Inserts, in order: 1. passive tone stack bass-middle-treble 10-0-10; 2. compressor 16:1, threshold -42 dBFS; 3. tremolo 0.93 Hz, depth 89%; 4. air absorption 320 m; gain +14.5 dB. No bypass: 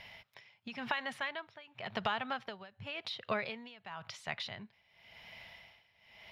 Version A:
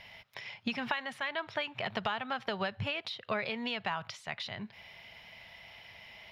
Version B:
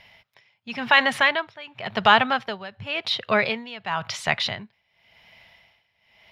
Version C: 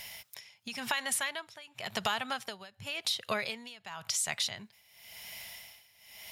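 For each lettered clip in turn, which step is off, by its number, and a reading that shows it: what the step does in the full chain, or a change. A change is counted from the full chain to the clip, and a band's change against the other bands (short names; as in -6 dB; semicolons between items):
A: 3, momentary loudness spread change -4 LU; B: 2, mean gain reduction 9.5 dB; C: 4, 8 kHz band +23.5 dB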